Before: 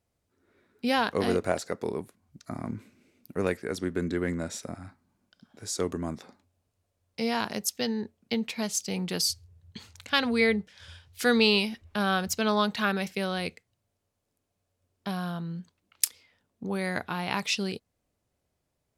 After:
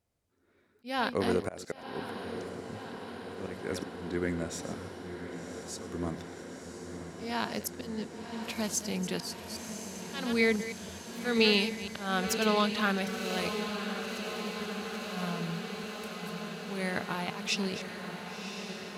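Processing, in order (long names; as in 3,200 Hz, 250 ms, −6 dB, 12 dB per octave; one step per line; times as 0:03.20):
delay that plays each chunk backwards 165 ms, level −13 dB
volume swells 217 ms
feedback delay with all-pass diffusion 1,063 ms, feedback 78%, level −8.5 dB
level −2.5 dB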